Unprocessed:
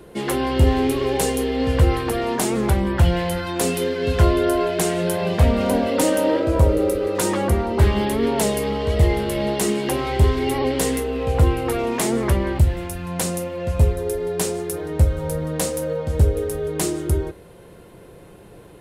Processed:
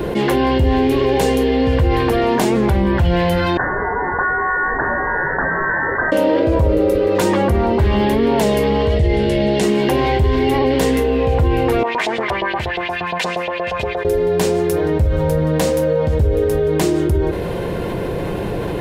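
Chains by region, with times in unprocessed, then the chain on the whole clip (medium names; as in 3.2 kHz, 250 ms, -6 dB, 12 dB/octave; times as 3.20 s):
3.57–6.12 s: steep high-pass 850 Hz + frequency inversion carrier 2.5 kHz
8.97–9.63 s: low-pass 10 kHz 24 dB/octave + peaking EQ 1.1 kHz -10 dB 0.79 oct
11.83–14.05 s: LFO band-pass saw up 8.5 Hz 700–4000 Hz + comb of notches 280 Hz
whole clip: peaking EQ 9.8 kHz -13 dB 1.3 oct; band-stop 1.3 kHz, Q 10; level flattener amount 70%; trim -2 dB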